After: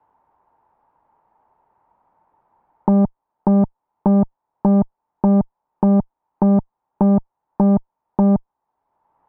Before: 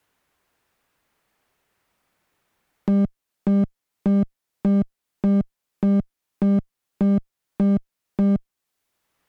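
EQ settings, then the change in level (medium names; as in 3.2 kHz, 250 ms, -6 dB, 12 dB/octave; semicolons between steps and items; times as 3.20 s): resonant low-pass 900 Hz, resonance Q 8.5; +3.5 dB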